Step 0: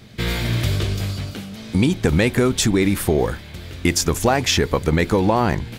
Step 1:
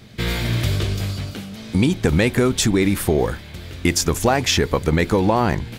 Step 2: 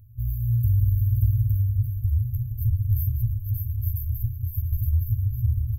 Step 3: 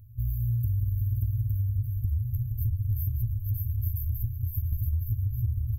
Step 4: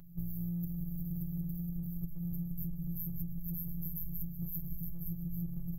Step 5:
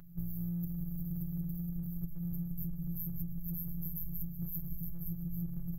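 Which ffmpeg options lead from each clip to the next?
ffmpeg -i in.wav -af anull out.wav
ffmpeg -i in.wav -af "aecho=1:1:41|143|580|691|863:0.282|0.112|0.708|0.178|0.668,afftfilt=real='re*(1-between(b*sr/4096,120,12000))':imag='im*(1-between(b*sr/4096,120,12000))':win_size=4096:overlap=0.75" out.wav
ffmpeg -i in.wav -af "acompressor=threshold=-24dB:ratio=6" out.wav
ffmpeg -i in.wav -af "afftfilt=real='hypot(re,im)*cos(PI*b)':imag='0':win_size=1024:overlap=0.75,acompressor=threshold=-39dB:ratio=6,volume=6dB" out.wav
ffmpeg -i in.wav -af "equalizer=frequency=1500:width_type=o:width=1.1:gain=6" out.wav

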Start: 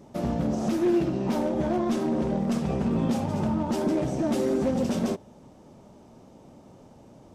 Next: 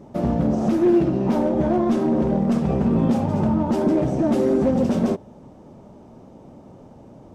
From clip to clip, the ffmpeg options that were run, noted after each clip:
ffmpeg -i in.wav -af "highshelf=frequency=2100:gain=-10.5,volume=6.5dB" out.wav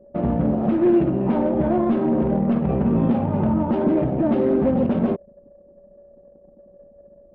ffmpeg -i in.wav -af "aeval=exprs='val(0)+0.01*sin(2*PI*570*n/s)':channel_layout=same,lowpass=frequency=3200:width=0.5412,lowpass=frequency=3200:width=1.3066,anlmdn=15.8" out.wav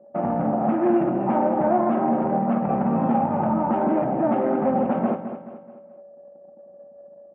ffmpeg -i in.wav -filter_complex "[0:a]highpass=220,equalizer=frequency=280:width_type=q:width=4:gain=-3,equalizer=frequency=410:width_type=q:width=4:gain=-8,equalizer=frequency=790:width_type=q:width=4:gain=10,equalizer=frequency=1300:width_type=q:width=4:gain=5,lowpass=frequency=2500:width=0.5412,lowpass=frequency=2500:width=1.3066,asplit=2[link_01][link_02];[link_02]aecho=0:1:214|428|642|856:0.316|0.13|0.0532|0.0218[link_03];[link_01][link_03]amix=inputs=2:normalize=0" out.wav

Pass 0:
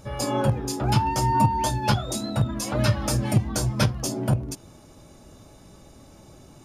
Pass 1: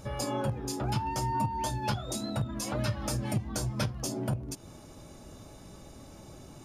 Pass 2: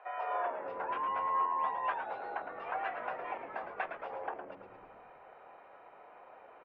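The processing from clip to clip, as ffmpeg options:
ffmpeg -i in.wav -af "acompressor=threshold=-35dB:ratio=2" out.wav
ffmpeg -i in.wav -filter_complex "[0:a]highpass=frequency=420:width_type=q:width=0.5412,highpass=frequency=420:width_type=q:width=1.307,lowpass=frequency=2300:width_type=q:width=0.5176,lowpass=frequency=2300:width_type=q:width=0.7071,lowpass=frequency=2300:width_type=q:width=1.932,afreqshift=160,asplit=2[link_01][link_02];[link_02]asplit=8[link_03][link_04][link_05][link_06][link_07][link_08][link_09][link_10];[link_03]adelay=110,afreqshift=-84,volume=-7.5dB[link_11];[link_04]adelay=220,afreqshift=-168,volume=-11.9dB[link_12];[link_05]adelay=330,afreqshift=-252,volume=-16.4dB[link_13];[link_06]adelay=440,afreqshift=-336,volume=-20.8dB[link_14];[link_07]adelay=550,afreqshift=-420,volume=-25.2dB[link_15];[link_08]adelay=660,afreqshift=-504,volume=-29.7dB[link_16];[link_09]adelay=770,afreqshift=-588,volume=-34.1dB[link_17];[link_10]adelay=880,afreqshift=-672,volume=-38.6dB[link_18];[link_11][link_12][link_13][link_14][link_15][link_16][link_17][link_18]amix=inputs=8:normalize=0[link_19];[link_01][link_19]amix=inputs=2:normalize=0" out.wav

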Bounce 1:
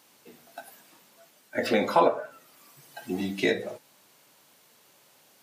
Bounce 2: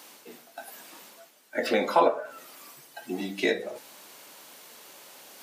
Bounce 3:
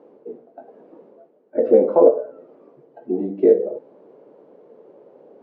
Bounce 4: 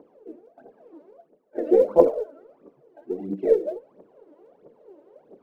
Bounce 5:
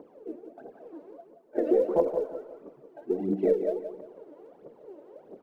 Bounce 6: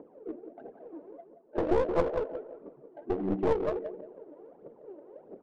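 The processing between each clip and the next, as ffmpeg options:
ffmpeg -i in.wav -af "highpass=240,areverse,acompressor=mode=upward:threshold=-38dB:ratio=2.5,areverse" out.wav
ffmpeg -i in.wav -af "lowpass=frequency=460:width_type=q:width=3.5,volume=4.5dB" out.wav
ffmpeg -i in.wav -af "aphaser=in_gain=1:out_gain=1:delay=3.5:decay=0.77:speed=1.5:type=triangular,volume=-7.5dB" out.wav
ffmpeg -i in.wav -af "acompressor=threshold=-24dB:ratio=4,aecho=1:1:175|350|525|700:0.335|0.114|0.0387|0.0132,volume=2.5dB" out.wav
ffmpeg -i in.wav -af "aeval=exprs='clip(val(0),-1,0.0299)':channel_layout=same,adynamicsmooth=sensitivity=6.5:basefreq=1500" out.wav

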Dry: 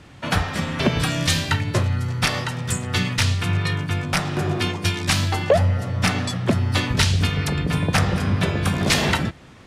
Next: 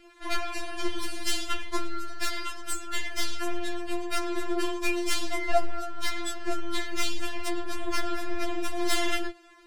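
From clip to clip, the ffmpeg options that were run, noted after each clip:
ffmpeg -i in.wav -af "aeval=exprs='(tanh(10*val(0)+0.7)-tanh(0.7))/10':channel_layout=same,afftfilt=real='re*4*eq(mod(b,16),0)':imag='im*4*eq(mod(b,16),0)':win_size=2048:overlap=0.75" out.wav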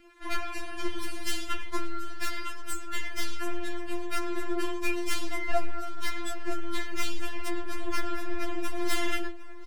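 ffmpeg -i in.wav -filter_complex "[0:a]equalizer=frequency=250:width_type=o:width=1:gain=5,equalizer=frequency=500:width_type=o:width=1:gain=-10,equalizer=frequency=4000:width_type=o:width=1:gain=-5,equalizer=frequency=8000:width_type=o:width=1:gain=-4,asplit=2[link_01][link_02];[link_02]adelay=757,lowpass=frequency=3800:poles=1,volume=-17.5dB,asplit=2[link_03][link_04];[link_04]adelay=757,lowpass=frequency=3800:poles=1,volume=0.54,asplit=2[link_05][link_06];[link_06]adelay=757,lowpass=frequency=3800:poles=1,volume=0.54,asplit=2[link_07][link_08];[link_08]adelay=757,lowpass=frequency=3800:poles=1,volume=0.54,asplit=2[link_09][link_10];[link_10]adelay=757,lowpass=frequency=3800:poles=1,volume=0.54[link_11];[link_01][link_03][link_05][link_07][link_09][link_11]amix=inputs=6:normalize=0" out.wav

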